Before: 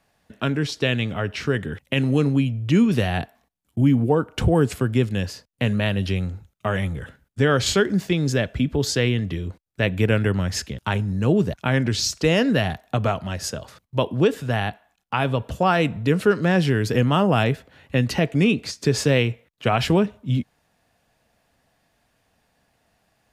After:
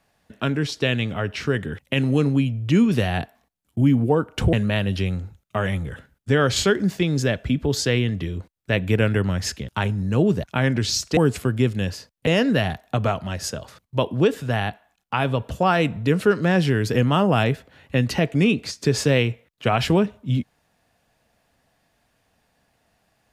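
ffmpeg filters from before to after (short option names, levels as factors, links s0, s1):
-filter_complex "[0:a]asplit=4[s0][s1][s2][s3];[s0]atrim=end=4.532[s4];[s1]atrim=start=5.628:end=12.272[s5];[s2]atrim=start=4.528:end=5.632[s6];[s3]atrim=start=12.268[s7];[s4][s5]acrossfade=d=0.004:c1=hsin:c2=hsin[s8];[s8][s6]acrossfade=d=0.004:c1=hsin:c2=hsin[s9];[s9][s7]acrossfade=d=0.004:c1=hsin:c2=hsin"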